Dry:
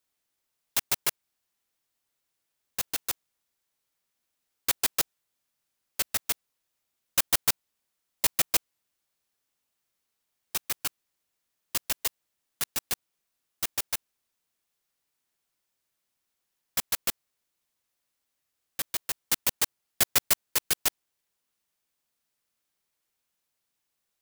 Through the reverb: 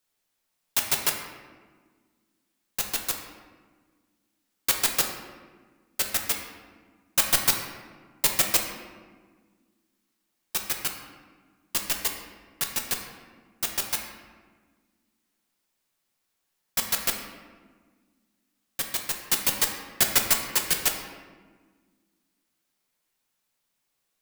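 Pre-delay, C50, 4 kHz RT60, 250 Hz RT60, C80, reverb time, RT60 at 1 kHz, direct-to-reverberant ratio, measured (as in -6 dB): 4 ms, 5.0 dB, 0.90 s, 2.4 s, 7.0 dB, 1.5 s, 1.4 s, 2.0 dB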